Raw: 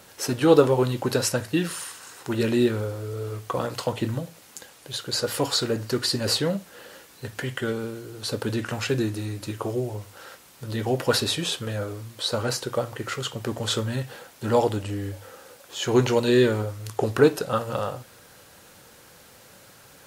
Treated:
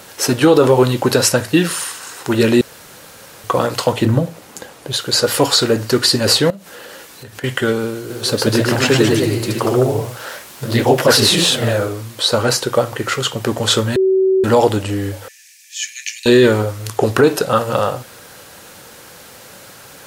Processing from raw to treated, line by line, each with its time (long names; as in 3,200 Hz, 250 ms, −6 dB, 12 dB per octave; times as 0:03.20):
0:02.61–0:03.44: fill with room tone
0:04.05–0:04.93: tilt shelving filter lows +5.5 dB, about 1,400 Hz
0:06.50–0:07.44: downward compressor 5 to 1, threshold −42 dBFS
0:07.94–0:11.95: delay with pitch and tempo change per echo 158 ms, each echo +1 semitone, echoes 3
0:13.96–0:14.44: beep over 380 Hz −21 dBFS
0:15.28–0:16.26: Chebyshev high-pass with heavy ripple 1,700 Hz, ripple 9 dB
whole clip: low-shelf EQ 150 Hz −5 dB; boost into a limiter +12.5 dB; level −1 dB